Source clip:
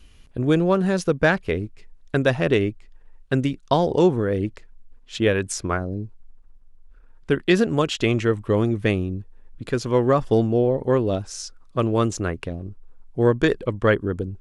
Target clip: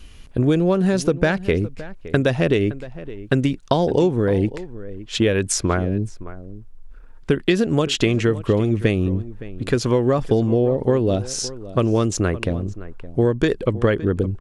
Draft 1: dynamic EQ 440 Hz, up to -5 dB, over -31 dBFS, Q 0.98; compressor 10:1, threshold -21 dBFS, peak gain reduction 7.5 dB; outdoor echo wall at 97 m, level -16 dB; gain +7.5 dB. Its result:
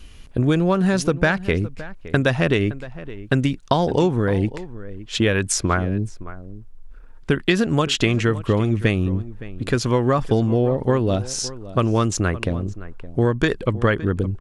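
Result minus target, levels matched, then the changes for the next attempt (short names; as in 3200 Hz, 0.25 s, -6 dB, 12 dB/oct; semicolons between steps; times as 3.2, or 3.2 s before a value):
1000 Hz band +3.5 dB
change: dynamic EQ 1200 Hz, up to -5 dB, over -31 dBFS, Q 0.98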